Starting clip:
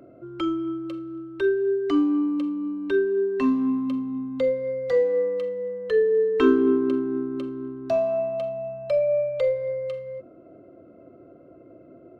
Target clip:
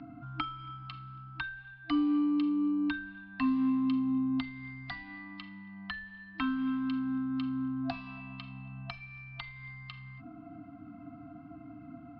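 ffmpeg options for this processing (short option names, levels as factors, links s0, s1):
-filter_complex "[0:a]acrossover=split=86|1900[s0][s1][s2];[s0]acompressor=threshold=0.00126:ratio=4[s3];[s1]acompressor=threshold=0.02:ratio=4[s4];[s2]acompressor=threshold=0.00355:ratio=4[s5];[s3][s4][s5]amix=inputs=3:normalize=0,afftfilt=real='re*(1-between(b*sr/4096,320,670))':imag='im*(1-between(b*sr/4096,320,670))':win_size=4096:overlap=0.75,aresample=11025,aresample=44100,volume=1.88"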